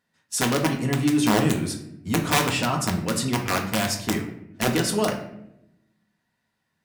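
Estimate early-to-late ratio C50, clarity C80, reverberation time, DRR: 8.5 dB, 12.0 dB, 0.80 s, 1.5 dB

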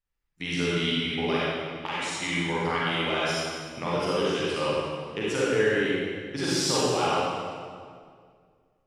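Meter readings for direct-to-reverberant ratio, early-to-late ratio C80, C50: -8.0 dB, -2.0 dB, -5.0 dB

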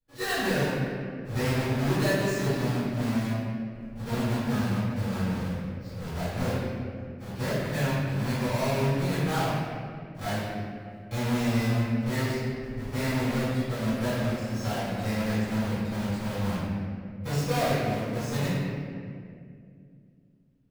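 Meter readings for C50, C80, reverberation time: -3.5 dB, -1.0 dB, 2.3 s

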